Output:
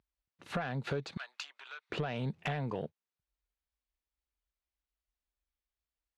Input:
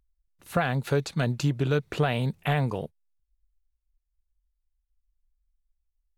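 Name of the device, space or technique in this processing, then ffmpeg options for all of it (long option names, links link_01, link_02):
AM radio: -filter_complex "[0:a]highpass=130,lowpass=4000,acompressor=threshold=-33dB:ratio=6,asoftclip=type=tanh:threshold=-27dB,asettb=1/sr,asplit=3[link_01][link_02][link_03];[link_01]atrim=end=1.174[link_04];[link_02]atrim=start=1.17:end=1.9,asetpts=PTS-STARTPTS,afade=type=in:duration=0.004:curve=qsin,afade=type=out:start_time=0.726:duration=0.004:curve=qsin,highpass=frequency=1000:width=0.5412,highpass=frequency=1000:width=1.3066[link_05];[link_03]atrim=start=1.896[link_06];[link_04][link_05]acrossfade=duration=0.004:curve1=hsin:curve2=qsin[link_07];[link_07][link_06]acrossfade=duration=0.004:curve1=qsin:curve2=hsin,volume=2.5dB"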